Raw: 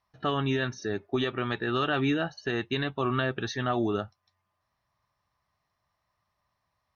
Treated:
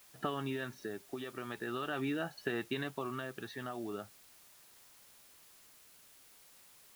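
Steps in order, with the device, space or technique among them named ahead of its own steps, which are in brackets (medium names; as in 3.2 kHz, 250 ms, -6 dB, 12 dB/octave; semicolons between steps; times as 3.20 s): medium wave at night (band-pass 150–3500 Hz; compression, threshold -32 dBFS, peak gain reduction 9 dB; tremolo 0.42 Hz, depth 55%; whistle 10 kHz -71 dBFS; white noise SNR 19 dB)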